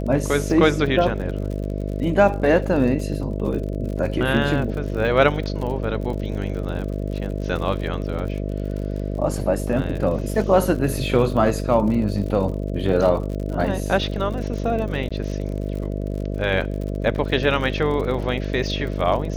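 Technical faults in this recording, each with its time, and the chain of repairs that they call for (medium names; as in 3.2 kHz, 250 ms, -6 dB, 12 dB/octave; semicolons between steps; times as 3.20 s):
buzz 50 Hz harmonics 13 -26 dBFS
crackle 56 per s -30 dBFS
15.09–15.11 s: dropout 16 ms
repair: de-click; de-hum 50 Hz, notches 13; interpolate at 15.09 s, 16 ms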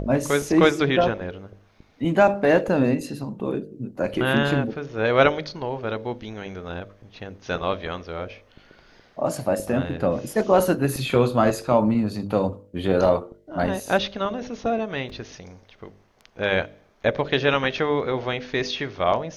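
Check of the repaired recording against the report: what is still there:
nothing left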